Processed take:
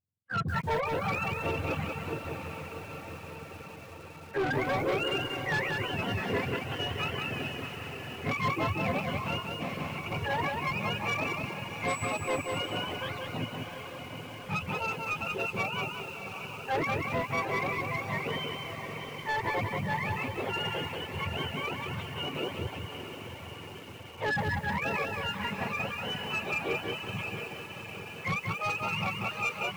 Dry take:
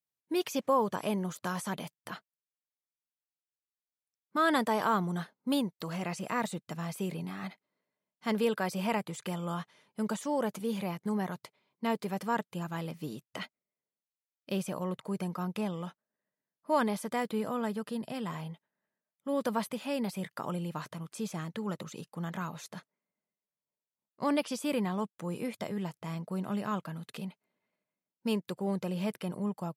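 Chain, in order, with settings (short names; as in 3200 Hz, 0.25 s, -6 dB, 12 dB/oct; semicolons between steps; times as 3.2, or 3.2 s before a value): spectrum mirrored in octaves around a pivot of 700 Hz; sample leveller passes 1; high shelf 3900 Hz -6.5 dB; soft clip -28.5 dBFS, distortion -11 dB; notches 60/120/180/240/300 Hz; on a send: diffused feedback echo 0.738 s, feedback 69%, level -7 dB; 9.38–10.12 on the sum: negative-ratio compressor -38 dBFS, ratio -0.5; reverb removal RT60 0.76 s; 11.87–12.39 whine 7900 Hz -44 dBFS; lo-fi delay 0.185 s, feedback 35%, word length 9-bit, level -3.5 dB; gain +3 dB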